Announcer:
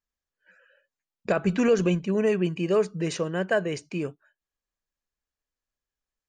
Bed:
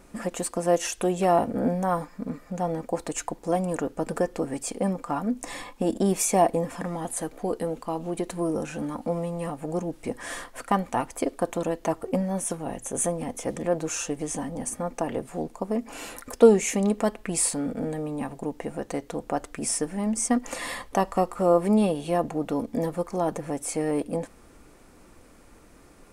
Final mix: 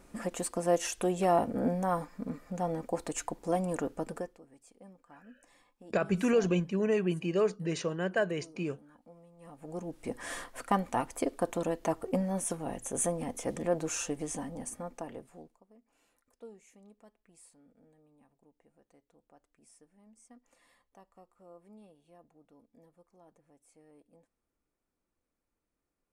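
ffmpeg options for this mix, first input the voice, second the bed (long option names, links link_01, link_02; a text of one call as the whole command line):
ffmpeg -i stem1.wav -i stem2.wav -filter_complex "[0:a]adelay=4650,volume=-5dB[link_01];[1:a]volume=18dB,afade=type=out:start_time=3.9:duration=0.49:silence=0.0749894,afade=type=in:start_time=9.37:duration=0.87:silence=0.0707946,afade=type=out:start_time=14.02:duration=1.61:silence=0.0334965[link_02];[link_01][link_02]amix=inputs=2:normalize=0" out.wav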